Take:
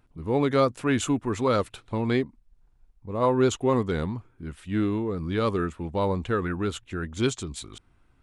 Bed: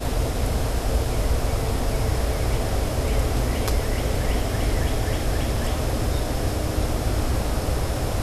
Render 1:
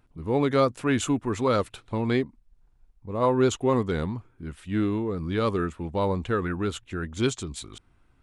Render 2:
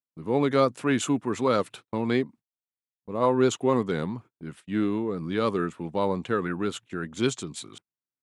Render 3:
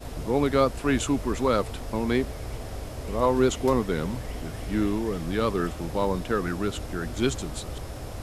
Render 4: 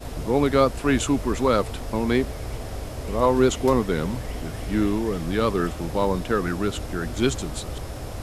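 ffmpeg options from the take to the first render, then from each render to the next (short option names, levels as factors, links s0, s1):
-af anull
-af "highpass=f=130:w=0.5412,highpass=f=130:w=1.3066,agate=range=0.0141:threshold=0.00562:ratio=16:detection=peak"
-filter_complex "[1:a]volume=0.251[s0];[0:a][s0]amix=inputs=2:normalize=0"
-af "volume=1.41"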